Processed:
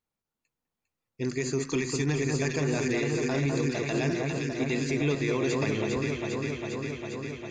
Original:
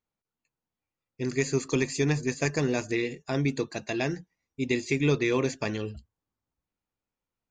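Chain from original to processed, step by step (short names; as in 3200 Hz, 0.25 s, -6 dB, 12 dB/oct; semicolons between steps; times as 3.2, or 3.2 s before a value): echo with dull and thin repeats by turns 0.201 s, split 1600 Hz, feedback 88%, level -4.5 dB; limiter -18 dBFS, peak gain reduction 7.5 dB; 1.62–2.11 bell 580 Hz -13 dB 0.27 oct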